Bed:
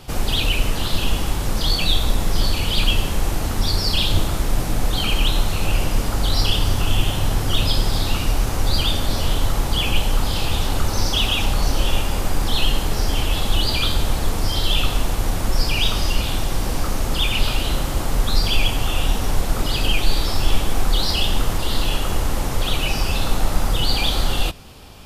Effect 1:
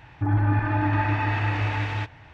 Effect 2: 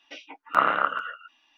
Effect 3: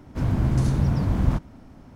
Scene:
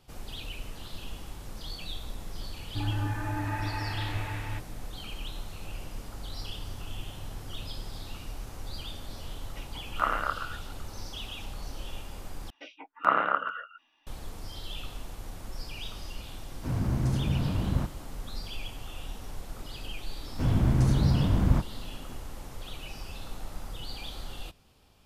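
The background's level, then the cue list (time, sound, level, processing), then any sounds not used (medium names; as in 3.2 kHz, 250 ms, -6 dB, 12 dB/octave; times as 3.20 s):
bed -20 dB
2.54 s: add 1 -9.5 dB
9.45 s: add 2 -7 dB
12.50 s: replace with 2 -1.5 dB + treble shelf 2.8 kHz -8.5 dB
16.48 s: add 3 -6 dB + high-pass 47 Hz
20.23 s: add 3 -2 dB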